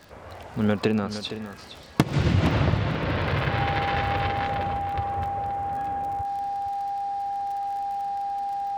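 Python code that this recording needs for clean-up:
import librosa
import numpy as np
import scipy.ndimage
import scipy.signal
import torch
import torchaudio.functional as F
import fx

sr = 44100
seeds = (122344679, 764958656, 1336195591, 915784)

y = fx.fix_declick_ar(x, sr, threshold=6.5)
y = fx.notch(y, sr, hz=800.0, q=30.0)
y = fx.fix_echo_inverse(y, sr, delay_ms=463, level_db=-11.5)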